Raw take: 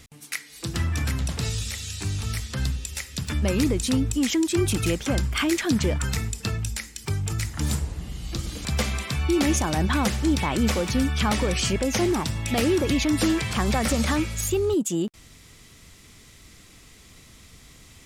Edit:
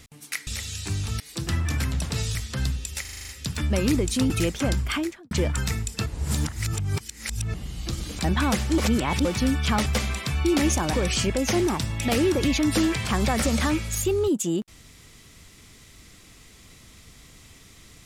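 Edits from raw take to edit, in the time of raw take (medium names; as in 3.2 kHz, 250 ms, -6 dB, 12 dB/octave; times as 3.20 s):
1.62–2.35 s: move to 0.47 s
3.01 s: stutter 0.04 s, 8 plays
4.02–4.76 s: delete
5.29–5.77 s: studio fade out
6.52–8.00 s: reverse
8.70–9.77 s: move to 11.39 s
10.31–10.78 s: reverse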